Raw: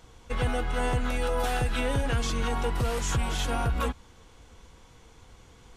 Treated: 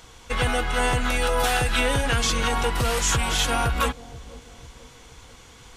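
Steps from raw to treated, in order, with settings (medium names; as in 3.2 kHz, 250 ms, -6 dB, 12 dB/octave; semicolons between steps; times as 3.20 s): tilt shelf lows -4.5 dB, about 880 Hz; on a send: bucket-brigade echo 486 ms, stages 2048, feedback 50%, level -16.5 dB; on the sum: trim +6.5 dB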